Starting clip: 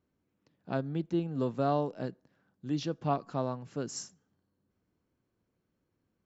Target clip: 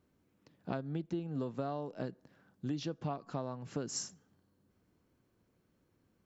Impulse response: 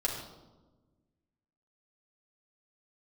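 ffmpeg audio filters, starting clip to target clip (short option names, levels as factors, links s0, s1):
-af "acompressor=threshold=0.0112:ratio=10,volume=1.88"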